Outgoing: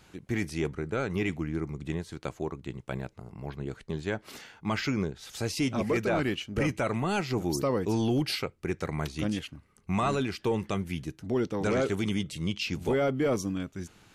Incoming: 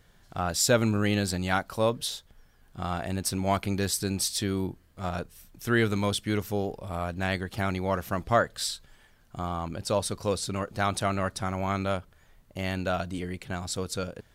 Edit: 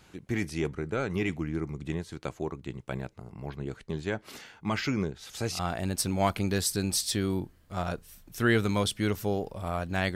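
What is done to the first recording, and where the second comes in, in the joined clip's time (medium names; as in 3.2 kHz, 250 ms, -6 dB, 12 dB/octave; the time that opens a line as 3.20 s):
outgoing
5.14 s: add incoming from 2.41 s 0.45 s -12 dB
5.59 s: go over to incoming from 2.86 s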